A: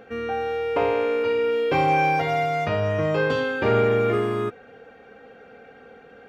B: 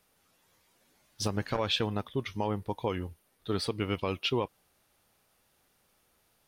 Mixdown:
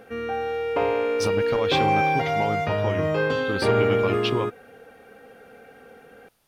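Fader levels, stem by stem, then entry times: −1.0, +2.5 decibels; 0.00, 0.00 seconds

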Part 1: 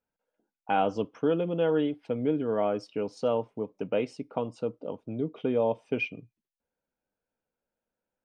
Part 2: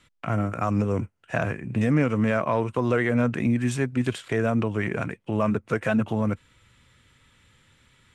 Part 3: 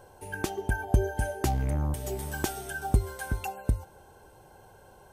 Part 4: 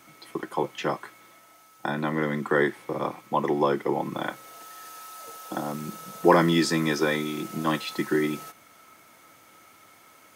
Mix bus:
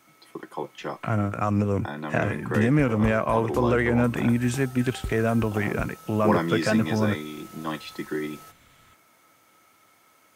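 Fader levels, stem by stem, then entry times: muted, +0.5 dB, −9.5 dB, −5.5 dB; muted, 0.80 s, 2.10 s, 0.00 s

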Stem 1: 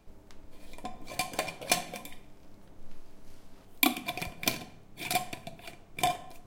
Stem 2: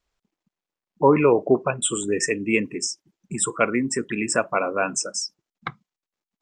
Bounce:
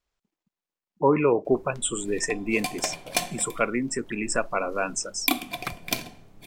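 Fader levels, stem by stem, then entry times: +1.5, −4.0 decibels; 1.45, 0.00 seconds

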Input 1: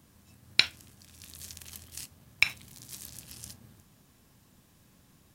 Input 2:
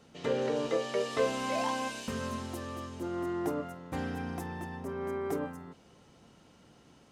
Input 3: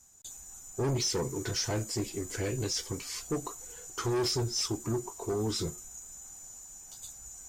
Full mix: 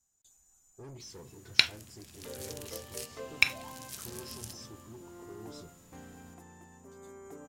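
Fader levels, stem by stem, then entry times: 0.0, −15.0, −18.0 decibels; 1.00, 2.00, 0.00 seconds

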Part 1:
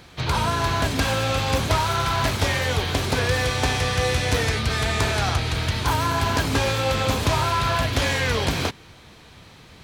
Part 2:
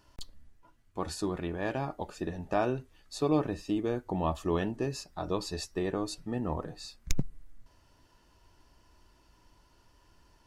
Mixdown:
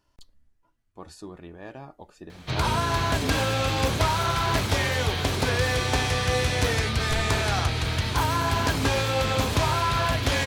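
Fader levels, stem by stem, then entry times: −2.0, −8.0 decibels; 2.30, 0.00 seconds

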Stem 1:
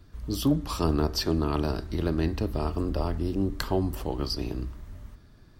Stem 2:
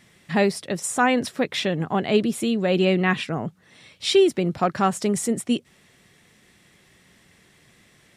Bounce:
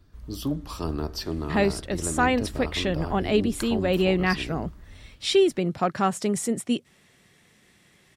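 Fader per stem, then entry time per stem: −4.5, −2.5 decibels; 0.00, 1.20 seconds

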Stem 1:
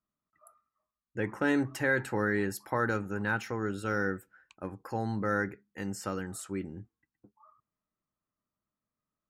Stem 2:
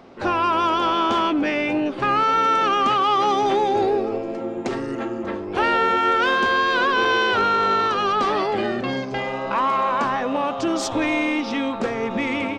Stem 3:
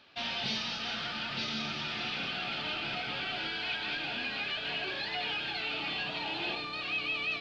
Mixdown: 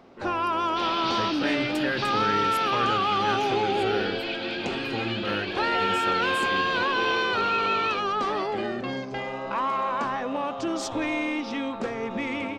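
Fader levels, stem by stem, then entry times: −1.5, −6.0, +1.5 decibels; 0.00, 0.00, 0.60 seconds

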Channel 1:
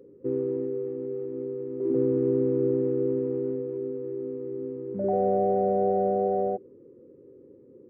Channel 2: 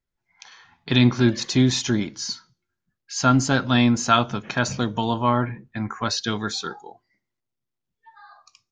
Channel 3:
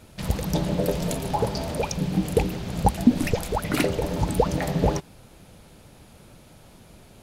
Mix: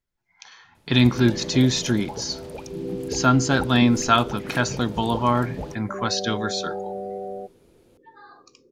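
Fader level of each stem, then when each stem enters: −7.0, 0.0, −11.5 decibels; 0.90, 0.00, 0.75 seconds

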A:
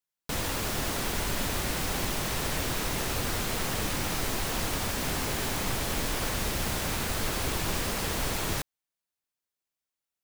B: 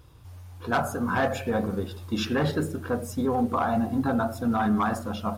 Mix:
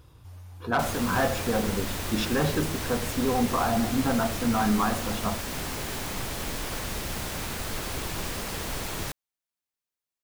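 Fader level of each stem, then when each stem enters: −2.5, −0.5 decibels; 0.50, 0.00 seconds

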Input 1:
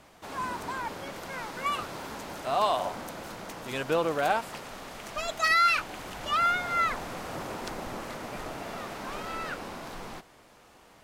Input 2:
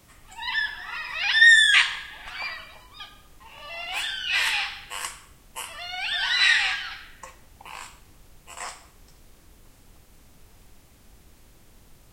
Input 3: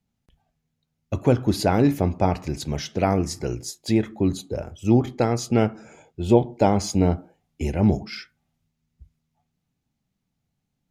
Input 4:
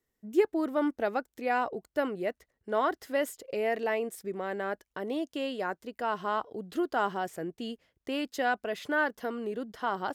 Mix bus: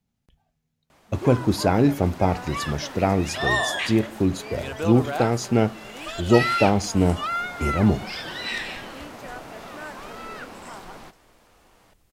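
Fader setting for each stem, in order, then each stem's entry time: −2.0, −11.0, 0.0, −11.5 decibels; 0.90, 2.05, 0.00, 0.85 seconds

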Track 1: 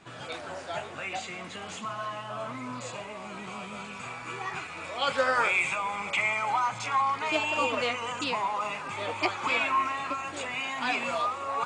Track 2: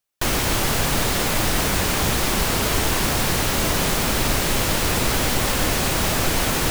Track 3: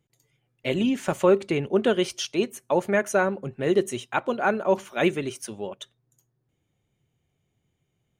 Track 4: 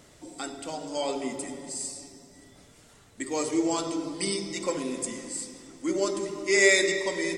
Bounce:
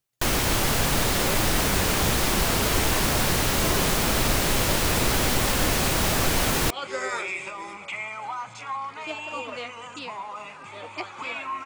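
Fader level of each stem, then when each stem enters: −6.0, −2.0, −17.0, −15.0 decibels; 1.75, 0.00, 0.00, 0.40 seconds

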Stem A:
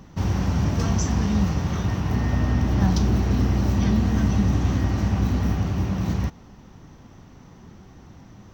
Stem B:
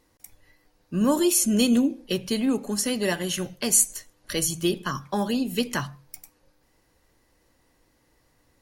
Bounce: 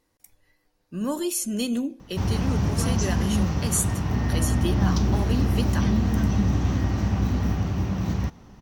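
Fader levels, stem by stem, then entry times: −1.5, −6.0 decibels; 2.00, 0.00 seconds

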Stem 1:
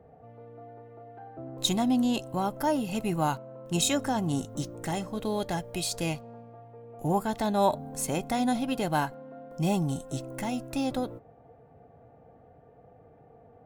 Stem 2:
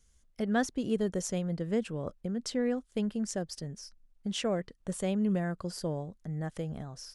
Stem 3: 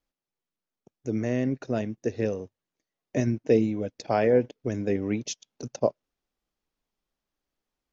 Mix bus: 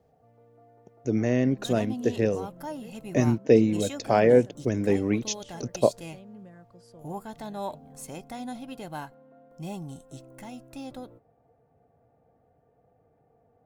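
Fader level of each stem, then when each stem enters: −10.0, −18.0, +3.0 decibels; 0.00, 1.10, 0.00 seconds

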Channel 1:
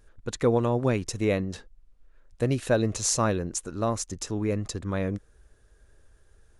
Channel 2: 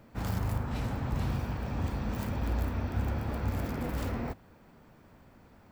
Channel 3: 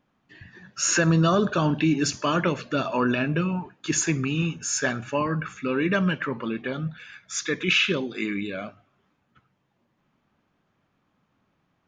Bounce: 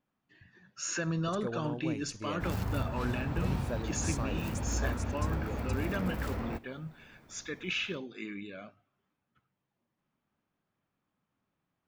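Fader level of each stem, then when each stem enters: −15.0, −2.0, −12.5 decibels; 1.00, 2.25, 0.00 seconds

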